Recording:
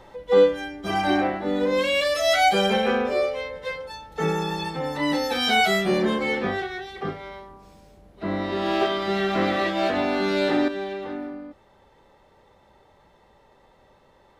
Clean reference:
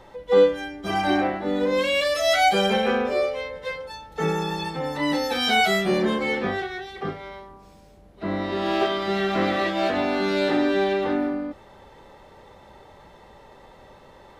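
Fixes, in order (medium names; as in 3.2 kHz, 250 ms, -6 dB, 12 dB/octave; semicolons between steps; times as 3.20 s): gain correction +8.5 dB, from 10.68 s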